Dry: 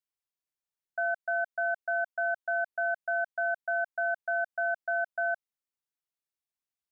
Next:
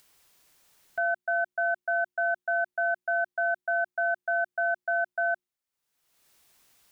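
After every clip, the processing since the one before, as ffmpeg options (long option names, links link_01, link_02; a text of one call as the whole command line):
ffmpeg -i in.wav -af "acompressor=mode=upward:threshold=-45dB:ratio=2.5,bandreject=frequency=60:width_type=h:width=6,bandreject=frequency=120:width_type=h:width=6,bandreject=frequency=180:width_type=h:width=6,bandreject=frequency=240:width_type=h:width=6,bandreject=frequency=300:width_type=h:width=6,bandreject=frequency=360:width_type=h:width=6,acontrast=87,volume=-4.5dB" out.wav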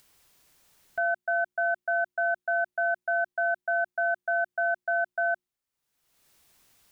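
ffmpeg -i in.wav -af "lowshelf=frequency=250:gain=5.5" out.wav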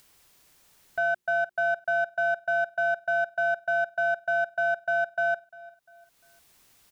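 ffmpeg -i in.wav -filter_complex "[0:a]asplit=2[link_01][link_02];[link_02]asoftclip=type=tanh:threshold=-32.5dB,volume=-9dB[link_03];[link_01][link_03]amix=inputs=2:normalize=0,aecho=1:1:349|698|1047:0.0891|0.0348|0.0136" out.wav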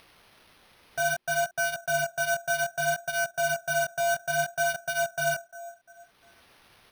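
ffmpeg -i in.wav -af "asoftclip=type=tanh:threshold=-24.5dB,flanger=delay=16.5:depth=6.8:speed=0.62,acrusher=samples=6:mix=1:aa=0.000001,volume=5.5dB" out.wav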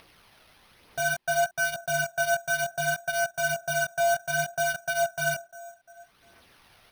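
ffmpeg -i in.wav -af "aphaser=in_gain=1:out_gain=1:delay=1.6:decay=0.33:speed=1.1:type=triangular" out.wav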